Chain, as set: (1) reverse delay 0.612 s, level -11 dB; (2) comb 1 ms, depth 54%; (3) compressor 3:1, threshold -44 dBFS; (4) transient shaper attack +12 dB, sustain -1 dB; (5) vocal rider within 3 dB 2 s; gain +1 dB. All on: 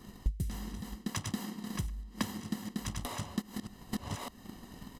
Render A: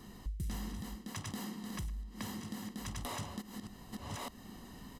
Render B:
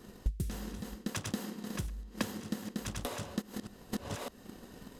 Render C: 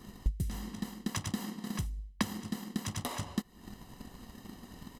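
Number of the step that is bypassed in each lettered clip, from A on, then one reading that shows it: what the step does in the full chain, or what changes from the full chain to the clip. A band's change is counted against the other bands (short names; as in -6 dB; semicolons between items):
4, crest factor change -6.0 dB; 2, 500 Hz band +6.0 dB; 1, crest factor change +2.0 dB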